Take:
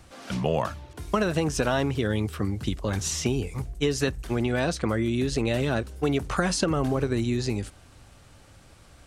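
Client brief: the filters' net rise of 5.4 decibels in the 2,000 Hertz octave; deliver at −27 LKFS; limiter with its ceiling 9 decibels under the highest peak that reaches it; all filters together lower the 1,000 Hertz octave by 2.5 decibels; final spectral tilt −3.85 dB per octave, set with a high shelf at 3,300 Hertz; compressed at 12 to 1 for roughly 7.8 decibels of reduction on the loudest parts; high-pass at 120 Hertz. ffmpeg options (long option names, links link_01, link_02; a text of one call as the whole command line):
ffmpeg -i in.wav -af "highpass=120,equalizer=frequency=1000:width_type=o:gain=-7,equalizer=frequency=2000:width_type=o:gain=7.5,highshelf=frequency=3300:gain=7,acompressor=threshold=-27dB:ratio=12,volume=6.5dB,alimiter=limit=-16dB:level=0:latency=1" out.wav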